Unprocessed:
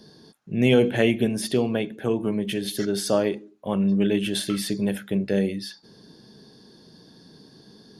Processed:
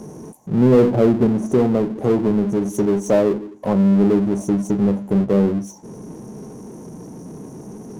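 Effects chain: brick-wall FIR band-stop 1100–5600 Hz; treble ducked by the level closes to 1200 Hz, closed at -20 dBFS; power-law curve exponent 0.7; gain +3.5 dB

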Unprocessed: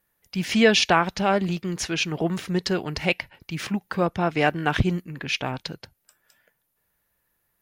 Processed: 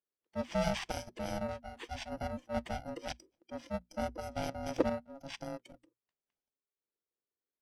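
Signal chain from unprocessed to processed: FFT order left unsorted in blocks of 64 samples; tape spacing loss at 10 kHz 28 dB; ring modulator 410 Hz; notches 60/120/180/240 Hz; spectral noise reduction 14 dB; gain -4 dB

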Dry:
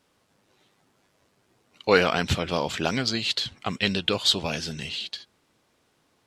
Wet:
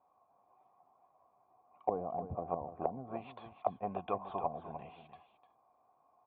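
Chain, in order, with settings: vocal tract filter a; treble ducked by the level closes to 300 Hz, closed at -37 dBFS; echo 0.301 s -11 dB; gain +10.5 dB

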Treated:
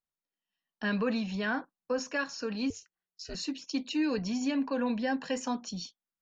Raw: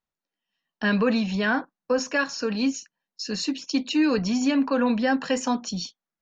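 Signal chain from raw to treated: 2.7–3.35 ring modulator 180 Hz; 3.92–5.35 notch 1300 Hz, Q 5.3; gain -8 dB

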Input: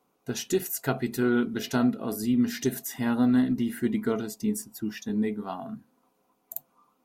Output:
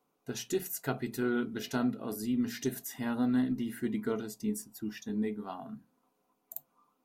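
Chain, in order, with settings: notches 60/120/180 Hz; reverb RT60 0.15 s, pre-delay 7 ms, DRR 16.5 dB; gain -6 dB

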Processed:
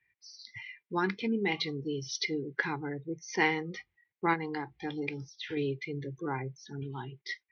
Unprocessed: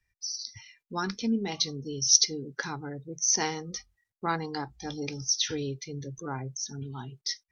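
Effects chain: 4.33–5.57 compressor 12:1, threshold -33 dBFS, peak gain reduction 12.5 dB; speaker cabinet 160–3100 Hz, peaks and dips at 240 Hz -9 dB, 340 Hz +4 dB, 620 Hz -10 dB, 1300 Hz -7 dB, 2100 Hz +8 dB; gain +3.5 dB

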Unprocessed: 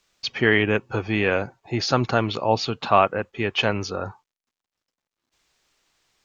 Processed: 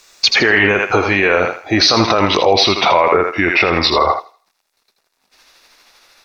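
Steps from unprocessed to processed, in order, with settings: gliding pitch shift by -5.5 st starting unshifted; tone controls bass -15 dB, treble +4 dB; notch 3100 Hz, Q 8.5; in parallel at +2 dB: negative-ratio compressor -26 dBFS; on the sum: low shelf 68 Hz +10 dB; on a send: thinning echo 81 ms, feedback 33%, high-pass 590 Hz, level -6.5 dB; on the sum: spectral gain 3.96–4.2, 500–2300 Hz +9 dB; maximiser +11 dB; gain -1 dB

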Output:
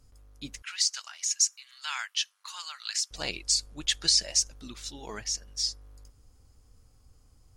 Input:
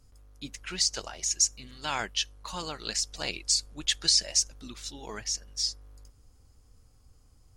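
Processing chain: 0.62–3.11 HPF 1200 Hz 24 dB/oct

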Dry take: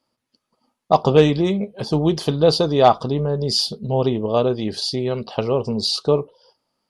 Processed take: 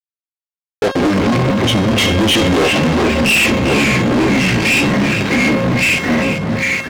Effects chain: delay-line pitch shifter -9 st; Doppler pass-by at 2.77, 32 m/s, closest 8.7 m; echo 1.117 s -23.5 dB; compressor, threshold -29 dBFS, peak gain reduction 18 dB; fuzz box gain 49 dB, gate -51 dBFS; BPF 160–6500 Hz; on a send: echo 0.396 s -11.5 dB; on the sum: echoes that change speed 87 ms, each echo -2 st, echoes 3, each echo -6 dB; resonator 540 Hz, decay 0.59 s, mix 80%; sample leveller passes 3; gain +9 dB

